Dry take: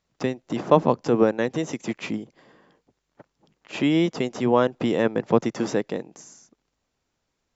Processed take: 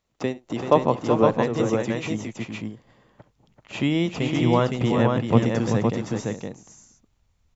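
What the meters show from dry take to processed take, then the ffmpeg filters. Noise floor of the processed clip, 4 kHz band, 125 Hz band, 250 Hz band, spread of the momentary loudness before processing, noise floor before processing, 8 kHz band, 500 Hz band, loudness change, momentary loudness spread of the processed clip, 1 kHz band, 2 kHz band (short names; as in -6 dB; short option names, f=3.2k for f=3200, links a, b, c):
-69 dBFS, +1.5 dB, +7.0 dB, +1.0 dB, 12 LU, -78 dBFS, n/a, 0.0 dB, +0.5 dB, 13 LU, +1.5 dB, +0.5 dB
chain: -filter_complex "[0:a]equalizer=f=160:t=o:w=0.33:g=-6,equalizer=f=1.6k:t=o:w=0.33:g=-4,equalizer=f=5k:t=o:w=0.33:g=-4,asplit=2[a][b];[b]aecho=0:1:67|385|514:0.119|0.447|0.668[c];[a][c]amix=inputs=2:normalize=0,asubboost=boost=7:cutoff=130"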